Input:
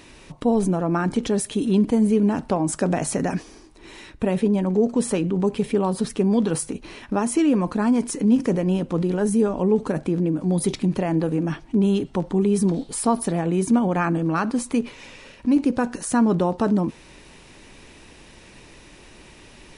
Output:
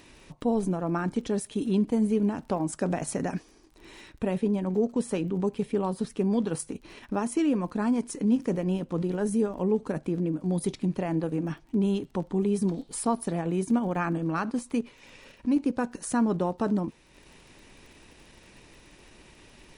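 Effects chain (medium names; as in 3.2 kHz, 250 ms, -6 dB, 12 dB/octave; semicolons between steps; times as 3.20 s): transient shaper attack 0 dB, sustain -6 dB; crackle 24 per s -40 dBFS; trim -6 dB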